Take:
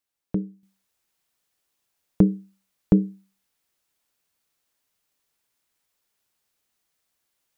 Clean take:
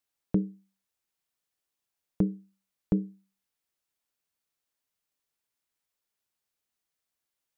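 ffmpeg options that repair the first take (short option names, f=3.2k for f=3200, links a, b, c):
-af "asetnsamples=n=441:p=0,asendcmd='0.63 volume volume -9dB',volume=0dB"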